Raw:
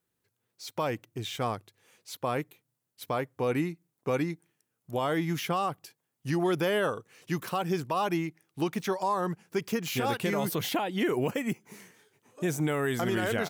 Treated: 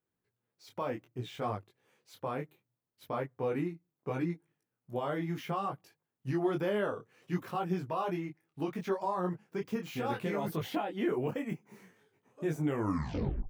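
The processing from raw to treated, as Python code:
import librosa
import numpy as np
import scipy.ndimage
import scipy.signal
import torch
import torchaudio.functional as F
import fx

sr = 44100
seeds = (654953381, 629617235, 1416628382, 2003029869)

y = fx.tape_stop_end(x, sr, length_s=0.85)
y = fx.peak_eq(y, sr, hz=9100.0, db=-12.0, octaves=2.9)
y = fx.detune_double(y, sr, cents=23)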